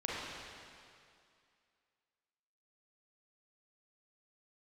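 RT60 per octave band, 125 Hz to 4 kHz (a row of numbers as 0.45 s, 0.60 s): 2.2 s, 2.3 s, 2.3 s, 2.4 s, 2.3 s, 2.2 s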